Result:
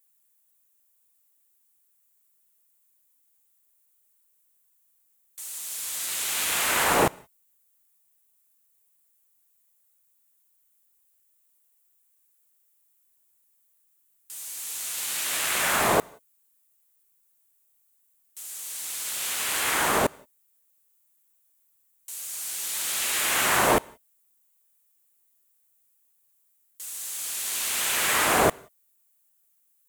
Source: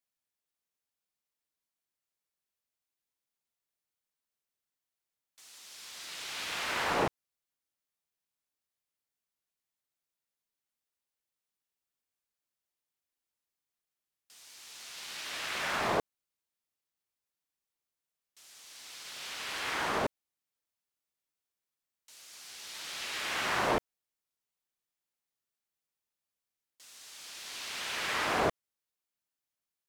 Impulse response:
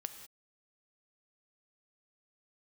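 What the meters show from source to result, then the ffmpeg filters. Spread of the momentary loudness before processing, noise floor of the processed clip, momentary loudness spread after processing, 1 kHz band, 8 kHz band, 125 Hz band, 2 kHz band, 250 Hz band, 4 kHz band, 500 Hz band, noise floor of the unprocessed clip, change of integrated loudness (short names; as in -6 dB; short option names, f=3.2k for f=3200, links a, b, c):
20 LU, -68 dBFS, 15 LU, +8.0 dB, +17.5 dB, +8.0 dB, +8.0 dB, +8.0 dB, +7.5 dB, +8.0 dB, under -85 dBFS, +9.0 dB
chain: -filter_complex "[0:a]aexciter=amount=5.9:drive=3.2:freq=7.1k,asplit=2[a][b];[1:a]atrim=start_sample=2205,asetrate=48510,aresample=44100[c];[b][c]afir=irnorm=-1:irlink=0,volume=-11.5dB[d];[a][d]amix=inputs=2:normalize=0,volume=6.5dB"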